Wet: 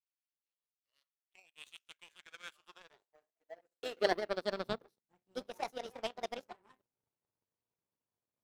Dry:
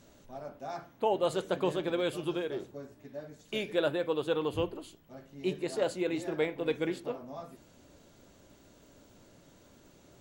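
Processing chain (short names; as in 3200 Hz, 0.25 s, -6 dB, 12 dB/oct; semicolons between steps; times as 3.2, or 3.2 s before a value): speed glide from 68% -> 174%; high-pass sweep 2600 Hz -> 100 Hz, 1.83–5.4; power-law curve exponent 2; gain +1 dB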